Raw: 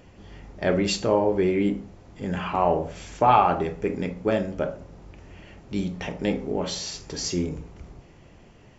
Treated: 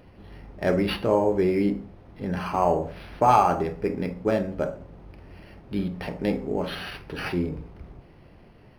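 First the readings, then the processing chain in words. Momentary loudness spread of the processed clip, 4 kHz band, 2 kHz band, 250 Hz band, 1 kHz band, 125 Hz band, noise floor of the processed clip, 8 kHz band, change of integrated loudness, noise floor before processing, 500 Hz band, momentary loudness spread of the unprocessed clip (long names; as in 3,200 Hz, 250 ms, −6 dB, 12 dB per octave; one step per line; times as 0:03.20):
15 LU, −4.5 dB, −0.5 dB, 0.0 dB, −0.5 dB, 0.0 dB, −52 dBFS, can't be measured, −0.5 dB, −51 dBFS, 0.0 dB, 13 LU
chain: linearly interpolated sample-rate reduction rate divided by 6×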